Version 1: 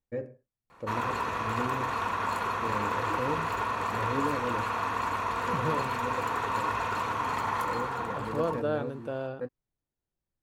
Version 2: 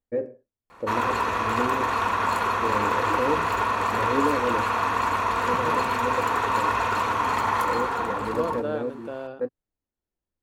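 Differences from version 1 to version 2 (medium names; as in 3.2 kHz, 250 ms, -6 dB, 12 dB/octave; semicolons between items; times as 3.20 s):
first voice: add peaking EQ 420 Hz +8.5 dB 2.5 oct; background +6.5 dB; master: add peaking EQ 140 Hz -12.5 dB 0.33 oct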